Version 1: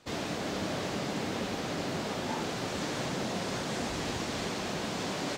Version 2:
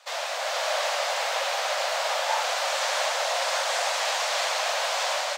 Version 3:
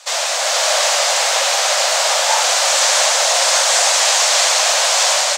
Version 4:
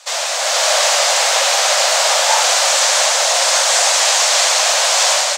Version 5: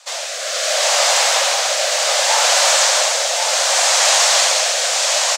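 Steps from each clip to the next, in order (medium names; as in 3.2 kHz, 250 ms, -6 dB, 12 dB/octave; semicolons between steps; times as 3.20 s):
steep high-pass 540 Hz 72 dB/octave; level rider gain up to 4 dB; trim +7 dB
peaking EQ 7.6 kHz +12 dB 1.5 oct; trim +8 dB
level rider; trim -1 dB
rotary cabinet horn 0.65 Hz; delay 1089 ms -5 dB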